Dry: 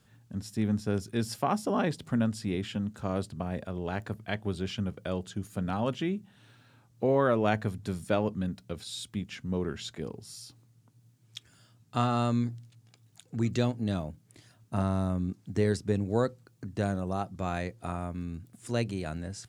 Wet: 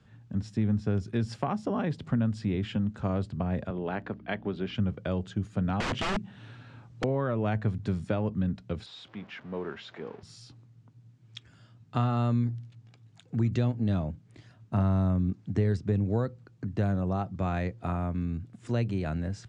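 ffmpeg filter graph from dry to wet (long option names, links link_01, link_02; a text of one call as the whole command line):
ffmpeg -i in.wav -filter_complex "[0:a]asettb=1/sr,asplit=3[link_01][link_02][link_03];[link_01]atrim=end=3.704[link_04];[link_02]atrim=start=3.7:end=4.75,asetpts=PTS-STARTPTS,afade=type=in:duration=0.004:curve=qsin,afade=type=out:start_time=1.046:duration=0.004:curve=qsin,aeval=exprs='val(0)+0.00631*(sin(2*PI*60*n/s)+sin(2*PI*2*60*n/s)/2+sin(2*PI*3*60*n/s)/3+sin(2*PI*4*60*n/s)/4+sin(2*PI*5*60*n/s)/5)':channel_layout=same,highpass=210,lowpass=3900[link_05];[link_03]atrim=start=4.746[link_06];[link_04][link_05]acrossfade=duration=0.004:curve1=hsin:curve2=qsin[link_07];[link_07][link_06]acrossfade=duration=0.004:curve1=qsin:curve2=hsin,asettb=1/sr,asplit=3[link_08][link_09][link_10];[link_08]atrim=end=5.804[link_11];[link_09]atrim=start=5.8:end=7.04,asetpts=PTS-STARTPTS,afade=type=in:duration=0.004:curve=qsin,afade=type=out:start_time=1.236:duration=0.004:curve=qsin,acontrast=48,aeval=exprs='(mod(17.8*val(0)+1,2)-1)/17.8':channel_layout=same[link_12];[link_10]atrim=start=7.036[link_13];[link_11][link_12]acrossfade=duration=0.004:curve1=hsin:curve2=qsin[link_14];[link_14][link_13]acrossfade=duration=0.004:curve1=qsin:curve2=hsin,asettb=1/sr,asplit=3[link_15][link_16][link_17];[link_15]atrim=end=8.864[link_18];[link_16]atrim=start=8.86:end=10.23,asetpts=PTS-STARTPTS,afade=type=in:duration=0.004:curve=qsin,afade=type=out:start_time=1.366:duration=0.004:curve=qsin,aeval=exprs='val(0)+0.5*0.00596*sgn(val(0))':channel_layout=same,highpass=670,lowpass=6900,aemphasis=mode=reproduction:type=riaa[link_19];[link_17]atrim=start=10.226[link_20];[link_18][link_19]acrossfade=duration=0.004:curve1=hsin:curve2=qsin[link_21];[link_21][link_20]acrossfade=duration=0.004:curve1=qsin:curve2=hsin,lowpass=frequency=7800:width=0.5412,lowpass=frequency=7800:width=1.3066,bass=frequency=250:gain=4,treble=frequency=4000:gain=-10,acrossover=split=120[link_22][link_23];[link_23]acompressor=threshold=-29dB:ratio=6[link_24];[link_22][link_24]amix=inputs=2:normalize=0,volume=2.5dB" out.wav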